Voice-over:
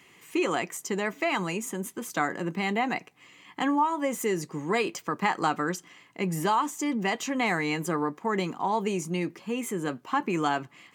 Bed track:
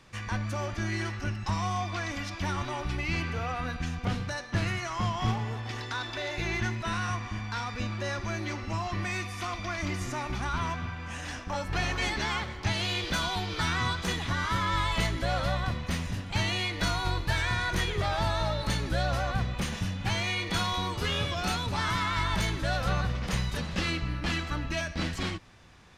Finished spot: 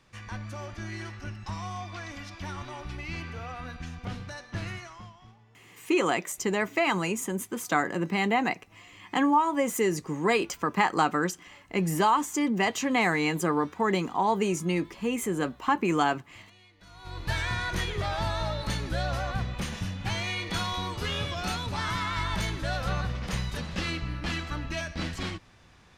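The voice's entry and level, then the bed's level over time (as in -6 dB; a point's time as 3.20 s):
5.55 s, +2.0 dB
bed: 4.76 s -6 dB
5.30 s -26.5 dB
16.84 s -26.5 dB
17.28 s -1.5 dB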